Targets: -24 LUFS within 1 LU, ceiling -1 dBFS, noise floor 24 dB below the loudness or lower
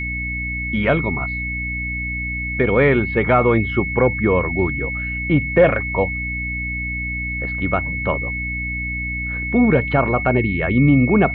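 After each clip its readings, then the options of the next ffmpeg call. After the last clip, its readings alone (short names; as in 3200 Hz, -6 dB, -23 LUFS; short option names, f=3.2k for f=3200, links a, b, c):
hum 60 Hz; harmonics up to 300 Hz; hum level -26 dBFS; steady tone 2200 Hz; tone level -24 dBFS; loudness -19.0 LUFS; peak -3.0 dBFS; loudness target -24.0 LUFS
-> -af "bandreject=f=60:t=h:w=6,bandreject=f=120:t=h:w=6,bandreject=f=180:t=h:w=6,bandreject=f=240:t=h:w=6,bandreject=f=300:t=h:w=6"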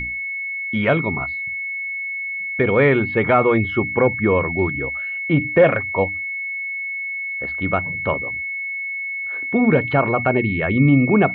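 hum none; steady tone 2200 Hz; tone level -24 dBFS
-> -af "bandreject=f=2.2k:w=30"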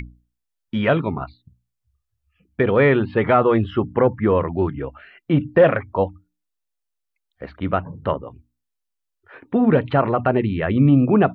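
steady tone none; loudness -19.5 LUFS; peak -3.5 dBFS; loudness target -24.0 LUFS
-> -af "volume=-4.5dB"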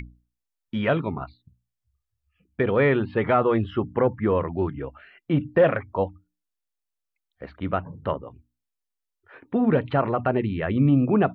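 loudness -24.0 LUFS; peak -8.0 dBFS; noise floor -83 dBFS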